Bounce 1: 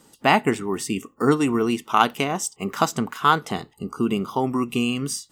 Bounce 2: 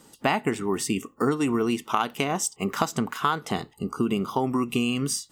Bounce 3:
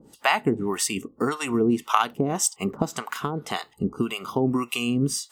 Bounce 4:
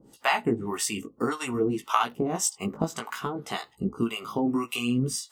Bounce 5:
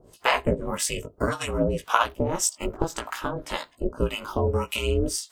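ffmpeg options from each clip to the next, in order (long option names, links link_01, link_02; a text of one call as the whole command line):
ffmpeg -i in.wav -af "acompressor=threshold=-21dB:ratio=6,volume=1dB" out.wav
ffmpeg -i in.wav -filter_complex "[0:a]acrossover=split=640[link_01][link_02];[link_01]aeval=exprs='val(0)*(1-1/2+1/2*cos(2*PI*1.8*n/s))':channel_layout=same[link_03];[link_02]aeval=exprs='val(0)*(1-1/2-1/2*cos(2*PI*1.8*n/s))':channel_layout=same[link_04];[link_03][link_04]amix=inputs=2:normalize=0,volume=5.5dB" out.wav
ffmpeg -i in.wav -af "flanger=delay=15:depth=4:speed=0.56" out.wav
ffmpeg -i in.wav -af "aeval=exprs='val(0)*sin(2*PI*170*n/s)':channel_layout=same,volume=5dB" out.wav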